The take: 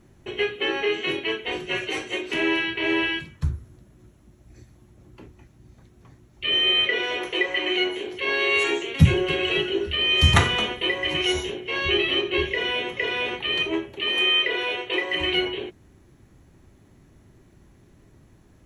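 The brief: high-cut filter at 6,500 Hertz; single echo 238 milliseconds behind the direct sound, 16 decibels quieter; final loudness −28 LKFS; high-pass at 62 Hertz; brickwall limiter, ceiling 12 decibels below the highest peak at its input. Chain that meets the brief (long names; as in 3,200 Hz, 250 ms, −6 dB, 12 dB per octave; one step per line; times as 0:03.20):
high-pass filter 62 Hz
low-pass filter 6,500 Hz
brickwall limiter −16 dBFS
single-tap delay 238 ms −16 dB
level −3 dB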